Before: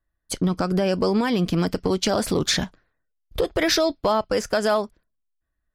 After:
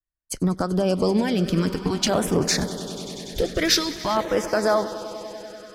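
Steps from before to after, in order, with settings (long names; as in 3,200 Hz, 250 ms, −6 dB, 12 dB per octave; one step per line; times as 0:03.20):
echo that builds up and dies away 97 ms, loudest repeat 5, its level −16.5 dB
auto-filter notch saw down 0.48 Hz 430–5,600 Hz
multiband upward and downward expander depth 40%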